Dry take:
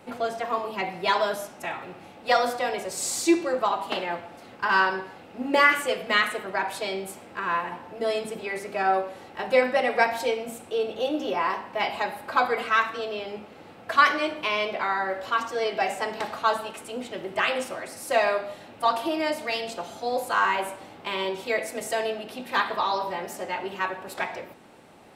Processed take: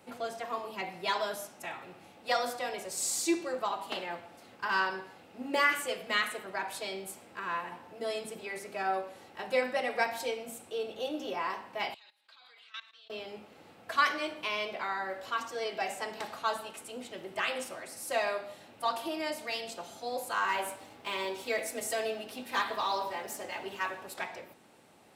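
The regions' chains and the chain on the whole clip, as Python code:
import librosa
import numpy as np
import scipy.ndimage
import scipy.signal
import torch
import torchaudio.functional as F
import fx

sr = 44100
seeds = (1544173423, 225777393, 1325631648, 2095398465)

y = fx.chain(x, sr, fx.bandpass_q(hz=3600.0, q=3.1),
    fx.level_steps(step_db=17), at=(11.94, 13.1))
y = fx.chain(y, sr, fx.leveller(passes=1),
    fx.notch_comb(f0_hz=180.0), at=(20.48, 24.07))
y = scipy.signal.sosfilt(scipy.signal.butter(2, 55.0, 'highpass', fs=sr, output='sos'), y)
y = fx.high_shelf(y, sr, hz=3900.0, db=7.5)
y = y * 10.0 ** (-9.0 / 20.0)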